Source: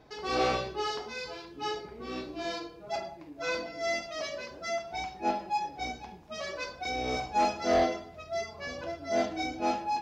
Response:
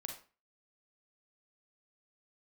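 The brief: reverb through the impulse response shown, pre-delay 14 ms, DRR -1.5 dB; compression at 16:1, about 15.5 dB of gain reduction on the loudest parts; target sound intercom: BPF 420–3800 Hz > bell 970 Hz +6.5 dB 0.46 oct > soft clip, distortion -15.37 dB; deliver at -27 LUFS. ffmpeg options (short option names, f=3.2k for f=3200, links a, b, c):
-filter_complex "[0:a]acompressor=threshold=-37dB:ratio=16,asplit=2[a][b];[1:a]atrim=start_sample=2205,adelay=14[c];[b][c]afir=irnorm=-1:irlink=0,volume=4dB[d];[a][d]amix=inputs=2:normalize=0,highpass=420,lowpass=3.8k,equalizer=f=970:t=o:w=0.46:g=6.5,asoftclip=threshold=-32.5dB,volume=13dB"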